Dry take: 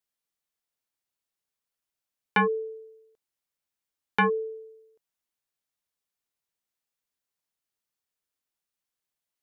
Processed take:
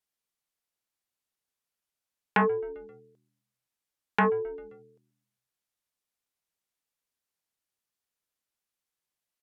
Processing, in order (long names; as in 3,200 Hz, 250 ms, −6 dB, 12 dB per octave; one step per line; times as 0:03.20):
echo with shifted repeats 132 ms, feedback 55%, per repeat −79 Hz, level −24 dB
treble cut that deepens with the level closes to 1,600 Hz, closed at −25 dBFS
highs frequency-modulated by the lows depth 0.14 ms